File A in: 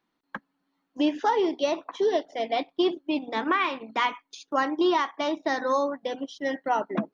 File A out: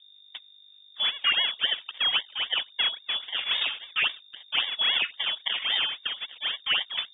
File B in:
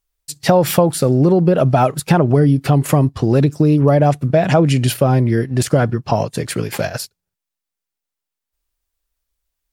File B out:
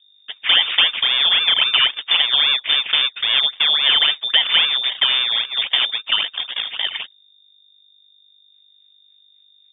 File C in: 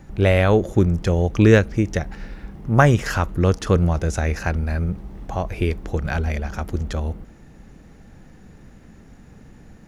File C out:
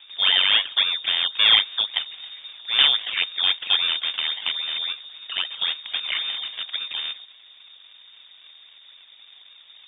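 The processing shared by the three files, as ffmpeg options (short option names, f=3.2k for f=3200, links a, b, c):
-filter_complex "[0:a]acrusher=samples=26:mix=1:aa=0.000001:lfo=1:lforange=26:lforate=3.7,aeval=exprs='val(0)+0.00501*(sin(2*PI*50*n/s)+sin(2*PI*2*50*n/s)/2+sin(2*PI*3*50*n/s)/3+sin(2*PI*4*50*n/s)/4+sin(2*PI*5*50*n/s)/5)':c=same,asplit=2[a][b];[b]highpass=f=720:p=1,volume=7dB,asoftclip=type=tanh:threshold=-0.5dB[c];[a][c]amix=inputs=2:normalize=0,lowpass=f=2.5k:p=1,volume=-6dB,lowpass=f=3.1k:t=q:w=0.5098,lowpass=f=3.1k:t=q:w=0.6013,lowpass=f=3.1k:t=q:w=0.9,lowpass=f=3.1k:t=q:w=2.563,afreqshift=-3700,volume=-1.5dB"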